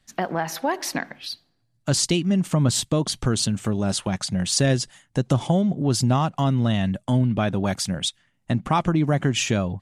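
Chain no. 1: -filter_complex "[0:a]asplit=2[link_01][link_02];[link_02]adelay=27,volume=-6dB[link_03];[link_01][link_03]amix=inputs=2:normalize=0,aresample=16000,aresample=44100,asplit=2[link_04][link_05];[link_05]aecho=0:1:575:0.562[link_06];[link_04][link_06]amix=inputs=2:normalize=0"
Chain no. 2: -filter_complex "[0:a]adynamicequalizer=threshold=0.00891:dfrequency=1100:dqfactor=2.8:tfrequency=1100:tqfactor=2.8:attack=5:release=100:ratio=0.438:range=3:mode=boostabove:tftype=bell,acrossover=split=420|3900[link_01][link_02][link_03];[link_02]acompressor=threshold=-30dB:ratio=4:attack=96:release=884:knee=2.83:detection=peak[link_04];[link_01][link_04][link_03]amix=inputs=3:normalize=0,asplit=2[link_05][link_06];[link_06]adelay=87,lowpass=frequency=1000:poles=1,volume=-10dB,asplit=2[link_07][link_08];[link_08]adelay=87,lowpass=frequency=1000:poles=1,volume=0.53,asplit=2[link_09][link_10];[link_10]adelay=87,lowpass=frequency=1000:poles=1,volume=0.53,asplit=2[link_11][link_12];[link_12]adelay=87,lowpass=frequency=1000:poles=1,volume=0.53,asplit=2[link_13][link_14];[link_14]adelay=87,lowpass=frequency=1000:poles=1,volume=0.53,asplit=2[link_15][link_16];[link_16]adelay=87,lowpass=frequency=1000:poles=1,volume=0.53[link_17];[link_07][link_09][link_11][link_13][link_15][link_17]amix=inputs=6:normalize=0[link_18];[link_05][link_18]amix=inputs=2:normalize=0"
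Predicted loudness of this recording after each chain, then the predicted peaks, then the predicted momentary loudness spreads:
−21.5, −23.0 LKFS; −6.0, −6.0 dBFS; 7, 8 LU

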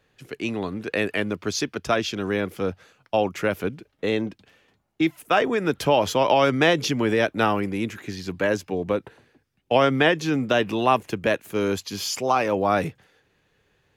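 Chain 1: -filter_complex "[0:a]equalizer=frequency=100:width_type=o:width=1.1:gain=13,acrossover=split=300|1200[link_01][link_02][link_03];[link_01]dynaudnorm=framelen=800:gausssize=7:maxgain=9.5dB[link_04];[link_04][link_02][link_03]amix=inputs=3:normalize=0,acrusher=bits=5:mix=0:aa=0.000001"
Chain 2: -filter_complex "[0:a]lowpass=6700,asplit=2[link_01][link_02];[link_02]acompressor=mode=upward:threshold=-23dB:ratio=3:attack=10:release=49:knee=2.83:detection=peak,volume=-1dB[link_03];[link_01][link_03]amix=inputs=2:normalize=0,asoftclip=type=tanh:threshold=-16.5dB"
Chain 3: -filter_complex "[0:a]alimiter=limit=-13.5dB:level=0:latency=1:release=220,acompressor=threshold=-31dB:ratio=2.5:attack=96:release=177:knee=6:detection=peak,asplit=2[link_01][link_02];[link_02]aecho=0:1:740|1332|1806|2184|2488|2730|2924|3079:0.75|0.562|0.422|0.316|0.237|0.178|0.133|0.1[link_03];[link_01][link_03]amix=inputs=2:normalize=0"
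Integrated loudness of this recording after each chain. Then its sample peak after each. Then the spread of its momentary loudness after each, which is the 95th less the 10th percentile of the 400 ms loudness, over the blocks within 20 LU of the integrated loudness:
−18.0, −23.0, −27.0 LKFS; −2.0, −16.5, −11.0 dBFS; 10, 14, 4 LU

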